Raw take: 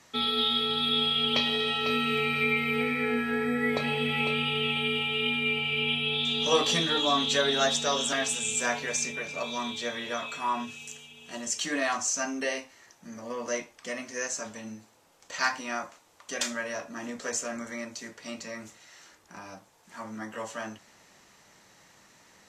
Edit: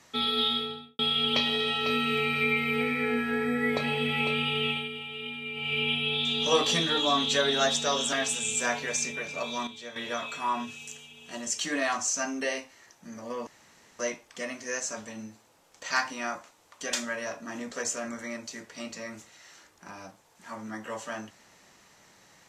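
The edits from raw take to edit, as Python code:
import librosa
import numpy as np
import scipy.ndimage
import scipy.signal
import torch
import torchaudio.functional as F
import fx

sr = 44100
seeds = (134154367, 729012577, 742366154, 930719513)

y = fx.studio_fade_out(x, sr, start_s=0.46, length_s=0.53)
y = fx.edit(y, sr, fx.fade_down_up(start_s=4.69, length_s=1.04, db=-9.5, fade_s=0.2),
    fx.clip_gain(start_s=9.67, length_s=0.29, db=-9.0),
    fx.insert_room_tone(at_s=13.47, length_s=0.52), tone=tone)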